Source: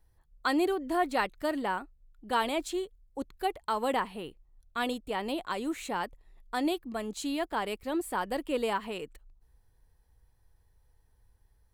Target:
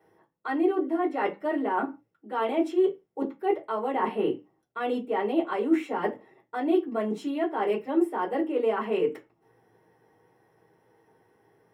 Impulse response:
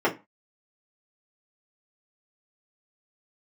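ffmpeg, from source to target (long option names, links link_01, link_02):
-filter_complex "[0:a]highpass=140,areverse,acompressor=threshold=-42dB:ratio=12,areverse[link_01];[1:a]atrim=start_sample=2205[link_02];[link_01][link_02]afir=irnorm=-1:irlink=0"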